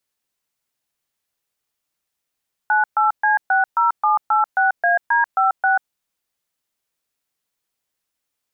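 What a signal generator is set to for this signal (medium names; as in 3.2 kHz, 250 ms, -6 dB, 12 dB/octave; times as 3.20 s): DTMF "98C60786AD56", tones 139 ms, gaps 128 ms, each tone -16 dBFS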